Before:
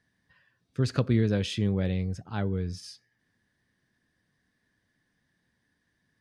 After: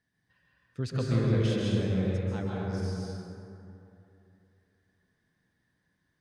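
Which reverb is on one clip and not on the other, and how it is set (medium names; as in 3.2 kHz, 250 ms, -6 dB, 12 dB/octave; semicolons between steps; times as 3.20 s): plate-style reverb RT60 2.9 s, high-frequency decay 0.4×, pre-delay 120 ms, DRR -4.5 dB; trim -7 dB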